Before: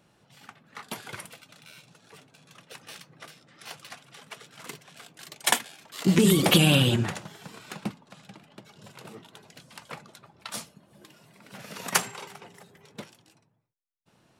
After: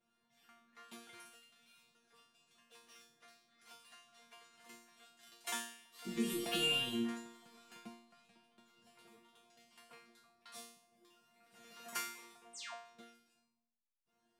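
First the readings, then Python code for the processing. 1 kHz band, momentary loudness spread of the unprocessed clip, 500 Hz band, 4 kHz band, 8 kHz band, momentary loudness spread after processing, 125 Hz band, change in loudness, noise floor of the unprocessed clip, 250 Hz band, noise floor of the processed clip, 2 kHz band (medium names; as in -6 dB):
-15.0 dB, 25 LU, -16.0 dB, -12.5 dB, -16.0 dB, 24 LU, -29.0 dB, -15.0 dB, -65 dBFS, -16.5 dB, -82 dBFS, -12.0 dB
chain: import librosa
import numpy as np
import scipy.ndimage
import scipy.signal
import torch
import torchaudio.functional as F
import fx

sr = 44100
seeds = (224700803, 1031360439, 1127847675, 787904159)

y = fx.spec_paint(x, sr, seeds[0], shape='fall', start_s=12.53, length_s=0.22, low_hz=490.0, high_hz=9500.0, level_db=-32.0)
y = fx.resonator_bank(y, sr, root=58, chord='fifth', decay_s=0.58)
y = y * librosa.db_to_amplitude(3.0)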